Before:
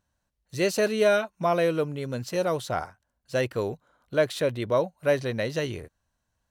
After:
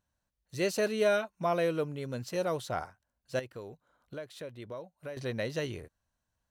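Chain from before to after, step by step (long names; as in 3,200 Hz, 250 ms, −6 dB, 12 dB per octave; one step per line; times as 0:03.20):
0:03.39–0:05.17: downward compressor 3 to 1, threshold −38 dBFS, peak gain reduction 15.5 dB
level −5.5 dB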